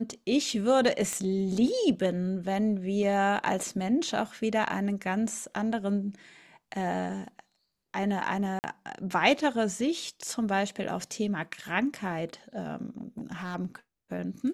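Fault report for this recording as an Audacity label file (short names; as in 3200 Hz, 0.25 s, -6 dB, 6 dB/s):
1.130000	1.130000	pop -18 dBFS
8.590000	8.640000	gap 49 ms
12.900000	13.560000	clipped -32 dBFS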